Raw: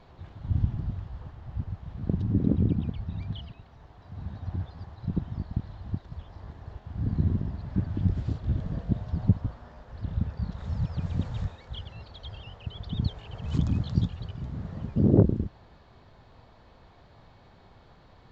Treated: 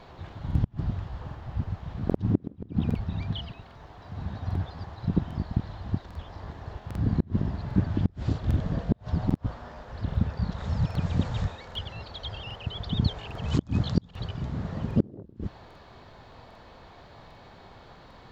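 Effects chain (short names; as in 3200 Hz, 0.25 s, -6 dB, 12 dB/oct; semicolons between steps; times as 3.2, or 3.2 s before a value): flipped gate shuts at -13 dBFS, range -30 dB; low shelf 220 Hz -6.5 dB; crackling interface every 0.80 s, samples 2048, repeat, from 0.46; gain +8 dB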